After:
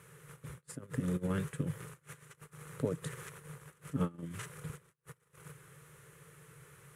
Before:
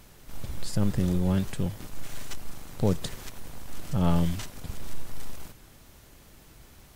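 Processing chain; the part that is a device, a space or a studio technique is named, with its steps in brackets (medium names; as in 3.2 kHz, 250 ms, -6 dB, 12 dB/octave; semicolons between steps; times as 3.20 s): FFT filter 100 Hz 0 dB, 150 Hz +10 dB, 240 Hz -28 dB, 460 Hz -3 dB, 700 Hz -23 dB, 1.2 kHz -6 dB, 1.8 kHz -7 dB, 4.8 kHz -21 dB, 10 kHz +7 dB, 15 kHz +4 dB; public-address speaker with an overloaded transformer (transformer saturation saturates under 85 Hz; band-pass 270–5100 Hz); trim +8 dB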